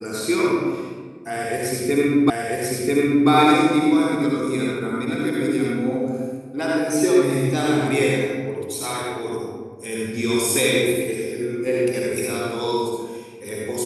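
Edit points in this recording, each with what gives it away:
2.3 repeat of the last 0.99 s

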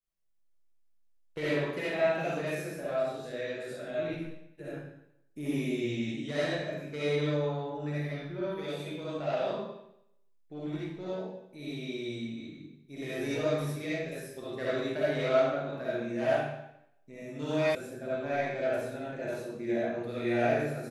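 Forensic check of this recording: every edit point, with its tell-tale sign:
17.75 sound cut off

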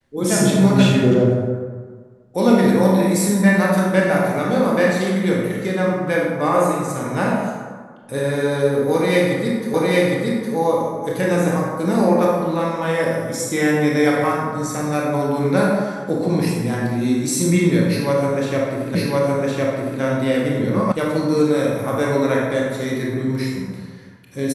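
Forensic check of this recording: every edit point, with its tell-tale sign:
9.74 repeat of the last 0.81 s
18.95 repeat of the last 1.06 s
20.92 sound cut off

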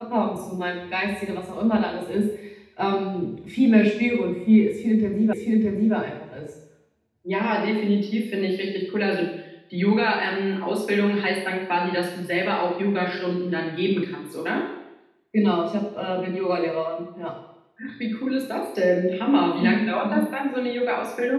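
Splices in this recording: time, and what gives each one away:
5.33 repeat of the last 0.62 s

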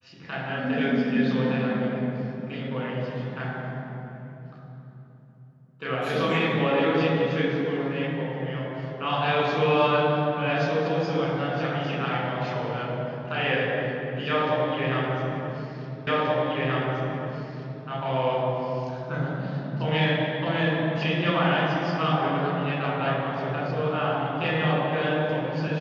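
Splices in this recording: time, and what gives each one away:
16.07 repeat of the last 1.78 s

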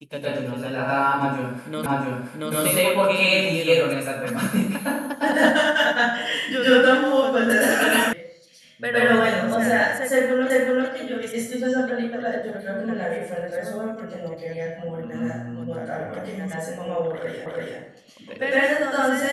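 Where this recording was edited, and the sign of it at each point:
1.86 repeat of the last 0.68 s
8.13 sound cut off
10.5 repeat of the last 0.38 s
17.46 repeat of the last 0.33 s

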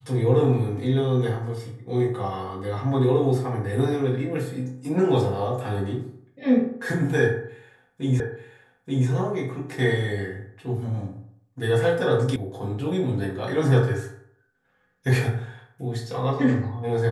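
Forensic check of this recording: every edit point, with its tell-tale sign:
8.2 repeat of the last 0.88 s
12.36 sound cut off

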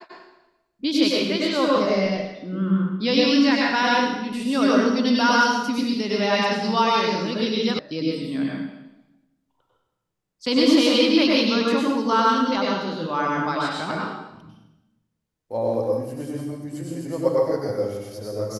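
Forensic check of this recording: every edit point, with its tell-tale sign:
7.79 sound cut off

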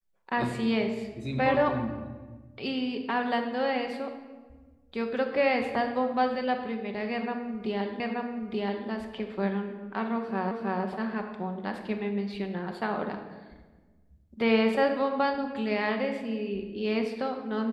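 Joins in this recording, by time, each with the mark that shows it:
8 repeat of the last 0.88 s
10.51 repeat of the last 0.32 s

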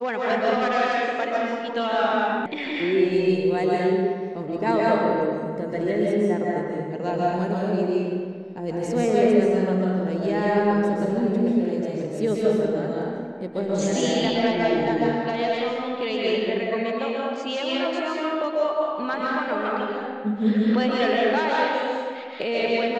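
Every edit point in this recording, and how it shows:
2.46 sound cut off

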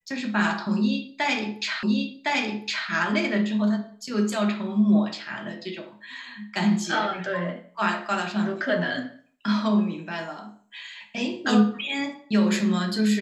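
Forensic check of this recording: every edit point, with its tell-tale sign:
1.83 repeat of the last 1.06 s

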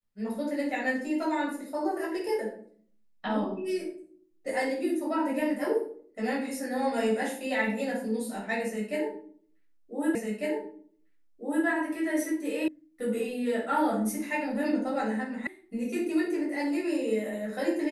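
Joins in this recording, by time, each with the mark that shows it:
10.15 repeat of the last 1.5 s
12.68 sound cut off
15.47 sound cut off

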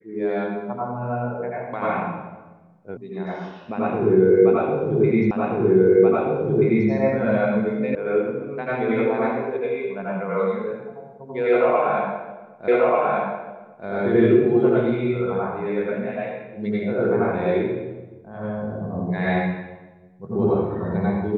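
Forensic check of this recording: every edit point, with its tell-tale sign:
2.97 sound cut off
5.31 repeat of the last 1.58 s
7.95 sound cut off
12.68 repeat of the last 1.19 s

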